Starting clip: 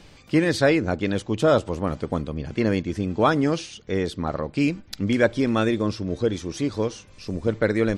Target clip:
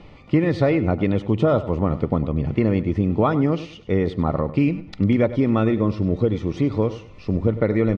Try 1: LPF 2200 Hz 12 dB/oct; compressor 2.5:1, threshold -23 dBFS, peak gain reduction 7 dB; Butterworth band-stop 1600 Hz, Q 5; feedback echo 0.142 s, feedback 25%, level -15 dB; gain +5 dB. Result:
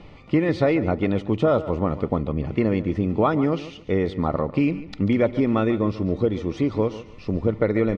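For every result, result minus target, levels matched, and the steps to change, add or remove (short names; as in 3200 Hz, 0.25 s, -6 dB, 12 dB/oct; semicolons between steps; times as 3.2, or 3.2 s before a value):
echo 43 ms late; 125 Hz band -2.5 dB
change: feedback echo 99 ms, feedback 25%, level -15 dB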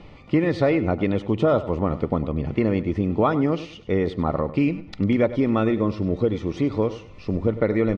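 125 Hz band -2.5 dB
add after Butterworth band-stop: dynamic EQ 120 Hz, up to +5 dB, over -41 dBFS, Q 0.86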